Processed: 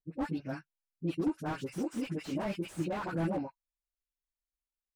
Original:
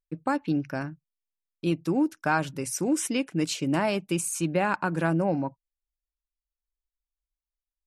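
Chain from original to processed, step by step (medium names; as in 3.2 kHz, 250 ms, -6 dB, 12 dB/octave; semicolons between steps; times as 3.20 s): plain phase-vocoder stretch 0.63×; phase dispersion highs, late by 63 ms, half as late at 870 Hz; slew-rate limiter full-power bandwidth 26 Hz; trim -3.5 dB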